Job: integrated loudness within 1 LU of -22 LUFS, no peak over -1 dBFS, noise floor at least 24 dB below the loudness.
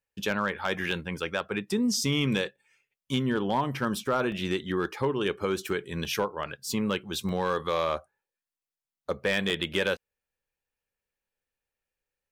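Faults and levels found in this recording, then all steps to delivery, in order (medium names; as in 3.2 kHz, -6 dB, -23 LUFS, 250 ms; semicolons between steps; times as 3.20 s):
clipped samples 0.2%; clipping level -18.0 dBFS; dropouts 7; longest dropout 1.5 ms; loudness -29.5 LUFS; peak level -18.0 dBFS; loudness target -22.0 LUFS
-> clip repair -18 dBFS; interpolate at 0.30/0.91/1.94/4.32/6.05/7.29/9.50 s, 1.5 ms; trim +7.5 dB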